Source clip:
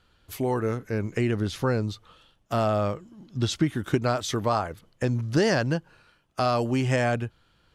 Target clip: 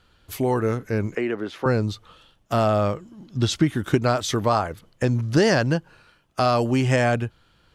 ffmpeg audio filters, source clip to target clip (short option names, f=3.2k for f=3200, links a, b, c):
-filter_complex "[0:a]asettb=1/sr,asplit=3[a][b][c];[a]atrim=end=1.154[d];[b]atrim=start=1.15:end=1.66,asetpts=PTS-STARTPTS,afade=t=in:d=0.004:c=qsin,afade=t=out:st=0.506:d=0.004:c=qsin,acrossover=split=260 2800:gain=0.0631 1 0.178[e][f][g];[e][f][g]amix=inputs=3:normalize=0[h];[c]atrim=start=1.656[i];[d][h]acrossfade=d=0.004:c1=hsin:c2=qsin[j];[j][i]acrossfade=d=0.004:c1=qsin:c2=hsin,volume=4dB"